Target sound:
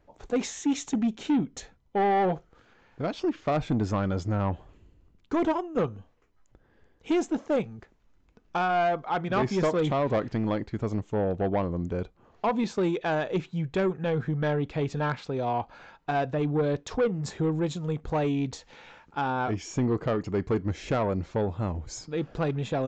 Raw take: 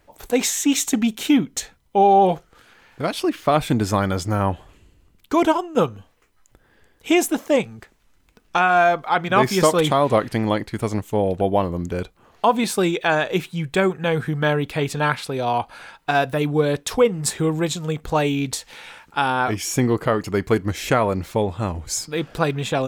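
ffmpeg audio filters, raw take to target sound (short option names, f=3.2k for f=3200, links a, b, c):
-af "tiltshelf=f=1.3k:g=5.5,aresample=16000,asoftclip=type=tanh:threshold=-10.5dB,aresample=44100,volume=-8.5dB"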